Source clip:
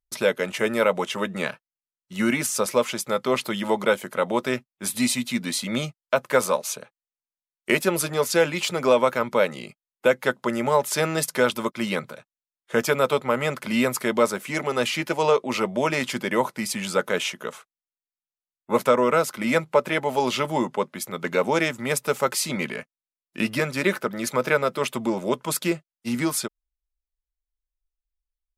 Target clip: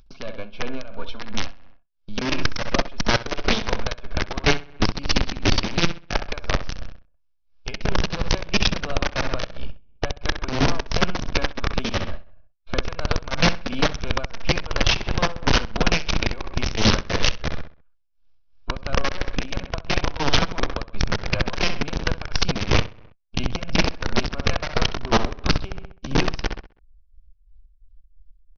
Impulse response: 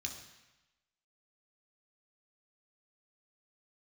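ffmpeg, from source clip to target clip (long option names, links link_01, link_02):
-filter_complex "[0:a]aeval=exprs='if(lt(val(0),0),0.447*val(0),val(0))':channel_layout=same,acompressor=threshold=-28dB:ratio=20,asubboost=boost=11.5:cutoff=58,asuperstop=centerf=1700:order=20:qfactor=5.5,bass=frequency=250:gain=10,treble=frequency=4000:gain=-3,aresample=11025,aeval=exprs='(mod(5.31*val(0)+1,2)-1)/5.31':channel_layout=same,aresample=44100,asetrate=49501,aresample=44100,atempo=0.890899,acompressor=mode=upward:threshold=-34dB:ratio=2.5,asplit=2[link_01][link_02];[link_02]adelay=65,lowpass=frequency=3800:poles=1,volume=-11dB,asplit=2[link_03][link_04];[link_04]adelay=65,lowpass=frequency=3800:poles=1,volume=0.51,asplit=2[link_05][link_06];[link_06]adelay=65,lowpass=frequency=3800:poles=1,volume=0.51,asplit=2[link_07][link_08];[link_08]adelay=65,lowpass=frequency=3800:poles=1,volume=0.51,asplit=2[link_09][link_10];[link_10]adelay=65,lowpass=frequency=3800:poles=1,volume=0.51[link_11];[link_01][link_03][link_05][link_07][link_09][link_11]amix=inputs=6:normalize=0,tremolo=f=2.9:d=0.73,volume=1.5dB"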